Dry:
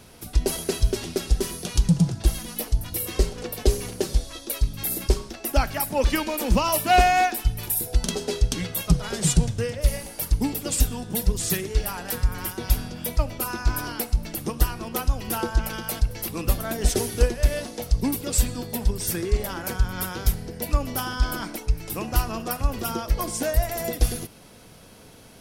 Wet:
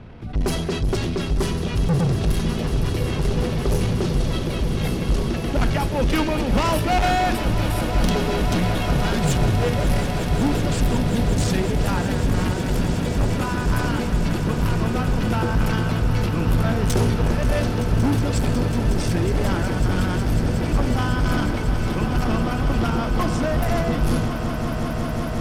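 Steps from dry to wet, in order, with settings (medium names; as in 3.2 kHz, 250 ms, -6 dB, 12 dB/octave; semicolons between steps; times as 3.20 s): level-controlled noise filter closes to 2.4 kHz, open at -14.5 dBFS; tone controls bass +9 dB, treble -6 dB; transient shaper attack -2 dB, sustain +6 dB; saturation -20.5 dBFS, distortion -4 dB; on a send: echo with a slow build-up 183 ms, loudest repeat 8, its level -13 dB; on the sum: trim +3 dB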